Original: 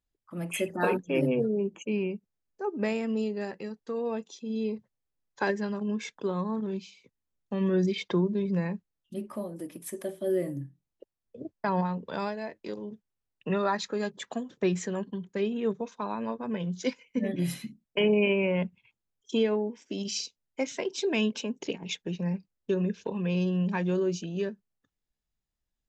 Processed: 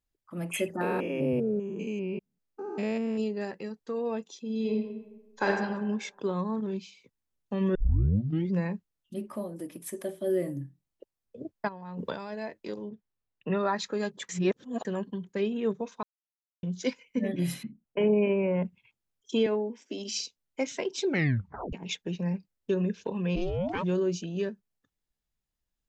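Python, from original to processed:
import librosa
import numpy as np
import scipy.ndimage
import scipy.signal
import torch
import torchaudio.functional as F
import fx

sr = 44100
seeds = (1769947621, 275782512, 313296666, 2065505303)

y = fx.spec_steps(x, sr, hold_ms=200, at=(0.81, 3.2))
y = fx.reverb_throw(y, sr, start_s=4.55, length_s=0.93, rt60_s=1.1, drr_db=-0.5)
y = fx.over_compress(y, sr, threshold_db=-39.0, ratio=-1.0, at=(11.67, 12.32), fade=0.02)
y = fx.air_absorb(y, sr, metres=170.0, at=(12.88, 13.77))
y = fx.lowpass(y, sr, hz=1500.0, slope=12, at=(17.63, 18.65))
y = fx.ellip_highpass(y, sr, hz=220.0, order=4, stop_db=40, at=(19.46, 20.14))
y = fx.ring_mod(y, sr, carrier_hz=fx.line((23.35, 130.0), (23.82, 780.0)), at=(23.35, 23.82), fade=0.02)
y = fx.edit(y, sr, fx.tape_start(start_s=7.75, length_s=0.77),
    fx.reverse_span(start_s=14.29, length_s=0.56),
    fx.silence(start_s=16.03, length_s=0.6),
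    fx.tape_stop(start_s=21.04, length_s=0.69), tone=tone)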